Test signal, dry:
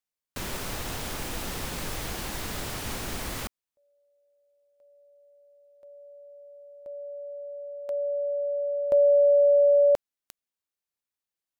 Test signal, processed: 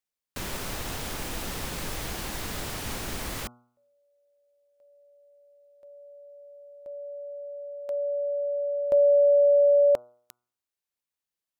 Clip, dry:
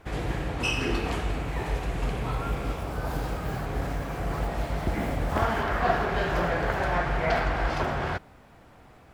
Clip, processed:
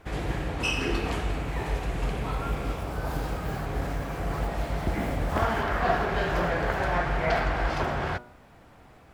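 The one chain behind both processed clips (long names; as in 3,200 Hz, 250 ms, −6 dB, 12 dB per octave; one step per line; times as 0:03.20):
hum removal 121.4 Hz, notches 12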